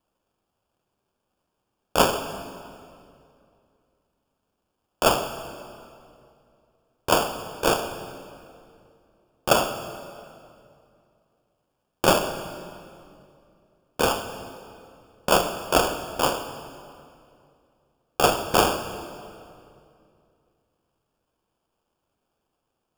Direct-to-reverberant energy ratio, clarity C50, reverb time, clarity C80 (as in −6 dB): 8.0 dB, 9.5 dB, 2.5 s, 10.5 dB